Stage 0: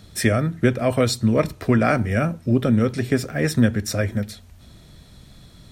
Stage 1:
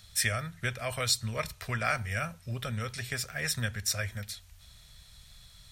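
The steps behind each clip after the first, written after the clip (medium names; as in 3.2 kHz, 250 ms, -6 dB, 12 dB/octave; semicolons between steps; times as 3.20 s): amplifier tone stack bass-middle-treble 10-0-10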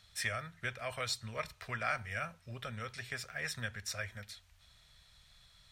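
overdrive pedal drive 6 dB, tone 2.6 kHz, clips at -13.5 dBFS; trim -5.5 dB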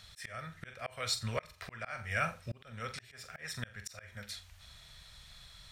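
flutter echo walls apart 7.5 m, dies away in 0.23 s; slow attack 438 ms; trim +8 dB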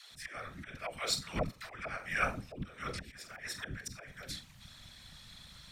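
phase dispersion lows, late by 138 ms, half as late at 360 Hz; whisper effect; trim +1 dB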